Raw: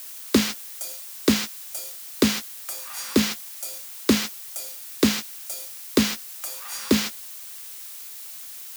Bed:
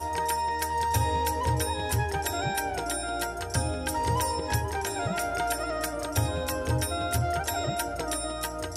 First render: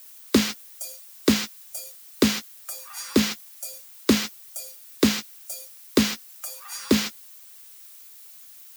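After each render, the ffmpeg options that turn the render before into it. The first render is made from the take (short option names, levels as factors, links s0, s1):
-af "afftdn=nr=10:nf=-39"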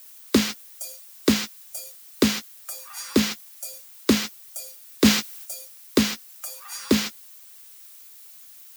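-filter_complex "[0:a]asplit=3[s0][s1][s2];[s0]afade=t=out:st=5.04:d=0.02[s3];[s1]acontrast=48,afade=t=in:st=5.04:d=0.02,afade=t=out:st=5.44:d=0.02[s4];[s2]afade=t=in:st=5.44:d=0.02[s5];[s3][s4][s5]amix=inputs=3:normalize=0"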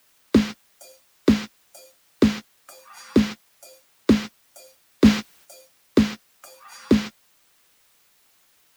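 -af "lowpass=f=1900:p=1,lowshelf=f=200:g=8"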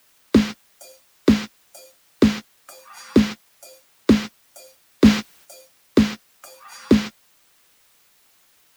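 -af "volume=1.33,alimiter=limit=0.794:level=0:latency=1"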